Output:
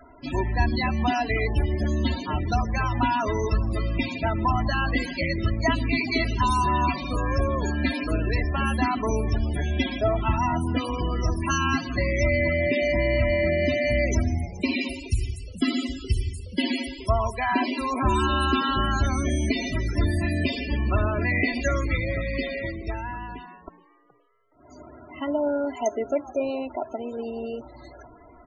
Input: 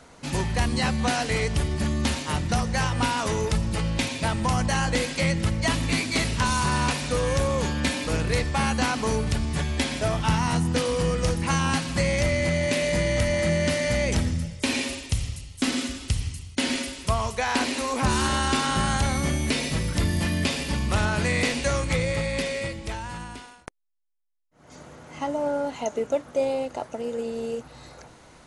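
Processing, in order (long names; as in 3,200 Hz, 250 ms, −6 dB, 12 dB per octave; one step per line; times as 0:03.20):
comb filter 3 ms, depth 69%
echo with shifted repeats 420 ms, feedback 33%, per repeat +120 Hz, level −19 dB
spectral peaks only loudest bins 32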